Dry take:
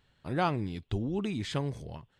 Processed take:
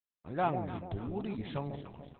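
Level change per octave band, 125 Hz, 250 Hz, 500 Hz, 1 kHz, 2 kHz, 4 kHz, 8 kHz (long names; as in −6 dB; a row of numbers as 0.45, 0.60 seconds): −5.5 dB, −5.0 dB, −2.0 dB, −0.5 dB, −5.5 dB, −10.5 dB, below −30 dB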